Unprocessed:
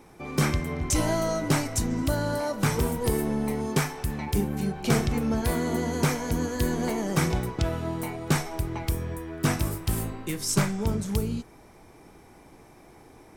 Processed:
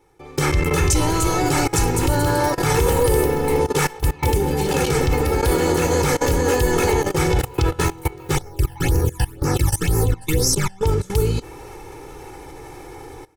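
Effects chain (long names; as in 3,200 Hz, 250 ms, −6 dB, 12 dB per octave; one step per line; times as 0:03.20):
delay with pitch and tempo change per echo 398 ms, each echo +2 semitones, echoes 3, each echo −6 dB
automatic gain control gain up to 16 dB
0:08.35–0:10.83: all-pass phaser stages 12, 2 Hz, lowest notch 380–3,400 Hz
output level in coarse steps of 21 dB
comb filter 2.3 ms, depth 84%
level +2 dB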